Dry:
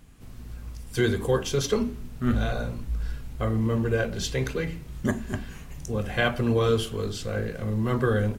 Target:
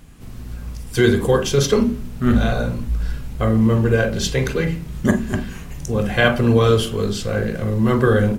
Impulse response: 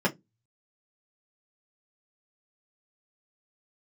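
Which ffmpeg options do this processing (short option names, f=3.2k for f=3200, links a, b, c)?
-filter_complex "[0:a]asplit=2[a][b];[1:a]atrim=start_sample=2205,adelay=38[c];[b][c]afir=irnorm=-1:irlink=0,volume=-22.5dB[d];[a][d]amix=inputs=2:normalize=0,volume=7.5dB"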